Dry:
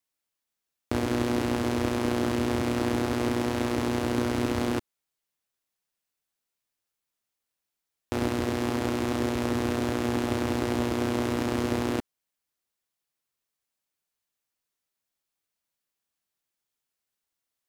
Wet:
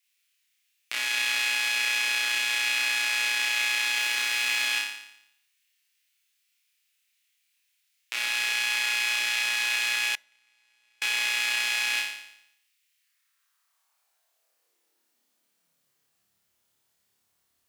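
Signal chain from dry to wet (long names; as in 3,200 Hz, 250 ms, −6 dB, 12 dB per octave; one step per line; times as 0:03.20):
in parallel at +2 dB: brickwall limiter −22 dBFS, peak gain reduction 10 dB
on the sum: flutter between parallel walls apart 4.9 metres, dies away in 0.77 s
0:03.96–0:04.66: background noise pink −41 dBFS
high-pass filter sweep 2,400 Hz → 82 Hz, 0:12.89–0:16.45
0:10.15–0:11.02: noise gate −20 dBFS, range −40 dB
on a send at −22 dB: convolution reverb RT60 0.45 s, pre-delay 4 ms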